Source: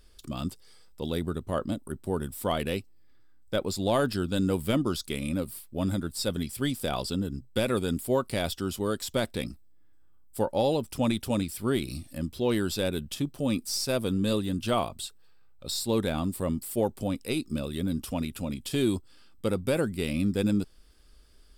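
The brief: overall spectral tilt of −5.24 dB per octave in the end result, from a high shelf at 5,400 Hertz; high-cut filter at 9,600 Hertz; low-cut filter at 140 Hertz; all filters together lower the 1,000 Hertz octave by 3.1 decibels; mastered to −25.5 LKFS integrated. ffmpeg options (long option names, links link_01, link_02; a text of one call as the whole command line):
ffmpeg -i in.wav -af "highpass=140,lowpass=9600,equalizer=frequency=1000:width_type=o:gain=-4,highshelf=frequency=5400:gain=-7,volume=6dB" out.wav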